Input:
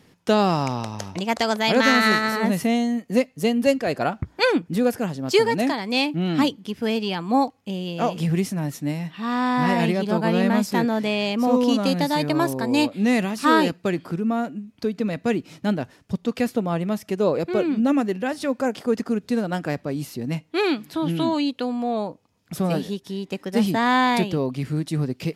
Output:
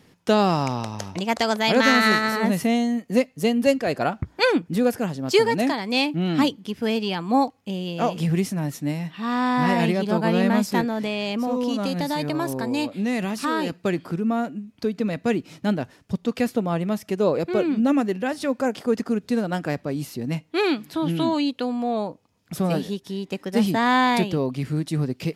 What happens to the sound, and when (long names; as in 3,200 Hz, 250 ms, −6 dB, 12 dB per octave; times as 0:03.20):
0:10.81–0:13.85: downward compressor 3 to 1, threshold −22 dBFS